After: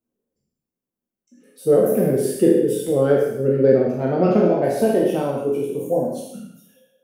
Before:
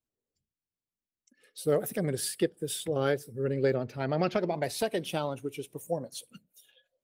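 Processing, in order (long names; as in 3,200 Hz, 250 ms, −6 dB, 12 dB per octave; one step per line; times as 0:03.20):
peak hold with a decay on every bin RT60 0.71 s
graphic EQ with 10 bands 250 Hz +10 dB, 500 Hz +7 dB, 2,000 Hz −4 dB, 4,000 Hz −10 dB, 8,000 Hz −4 dB
reverb whose tail is shaped and stops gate 230 ms falling, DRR −0.5 dB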